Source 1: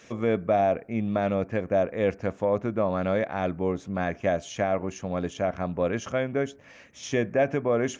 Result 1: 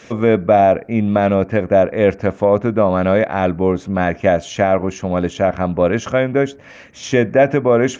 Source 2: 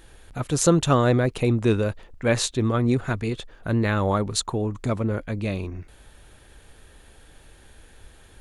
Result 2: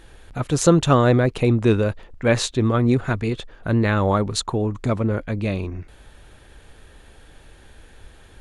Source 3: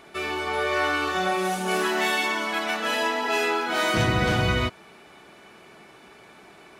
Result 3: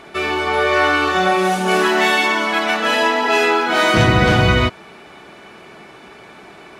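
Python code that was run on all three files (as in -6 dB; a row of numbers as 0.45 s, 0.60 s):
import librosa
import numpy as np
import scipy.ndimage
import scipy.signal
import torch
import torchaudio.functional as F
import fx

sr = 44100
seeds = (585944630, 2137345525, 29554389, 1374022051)

y = fx.high_shelf(x, sr, hz=7700.0, db=-9.0)
y = y * 10.0 ** (-2 / 20.0) / np.max(np.abs(y))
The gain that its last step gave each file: +11.0 dB, +3.5 dB, +9.0 dB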